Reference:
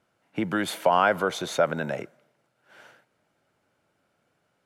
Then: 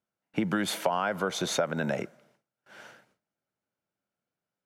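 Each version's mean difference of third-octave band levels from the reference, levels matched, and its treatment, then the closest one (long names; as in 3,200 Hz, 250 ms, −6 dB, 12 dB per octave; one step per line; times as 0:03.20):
4.0 dB: parametric band 200 Hz +5 dB 0.48 octaves
noise gate with hold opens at −57 dBFS
downward compressor 6 to 1, threshold −26 dBFS, peak gain reduction 11 dB
parametric band 5,800 Hz +3.5 dB 0.71 octaves
level +2 dB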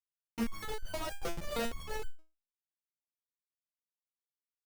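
12.0 dB: treble cut that deepens with the level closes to 1,200 Hz, closed at −18 dBFS
downward compressor 2 to 1, threshold −30 dBFS, peak gain reduction 8 dB
comparator with hysteresis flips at −31.5 dBFS
step-sequenced resonator 6.4 Hz 170–1,500 Hz
level +16.5 dB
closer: first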